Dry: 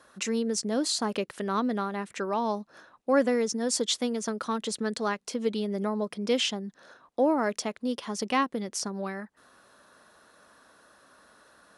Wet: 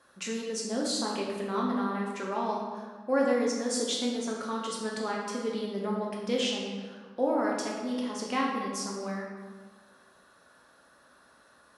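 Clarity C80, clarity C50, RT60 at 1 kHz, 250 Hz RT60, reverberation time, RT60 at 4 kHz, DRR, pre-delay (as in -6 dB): 3.5 dB, 1.0 dB, 1.5 s, 1.5 s, 1.6 s, 1.0 s, -3.0 dB, 6 ms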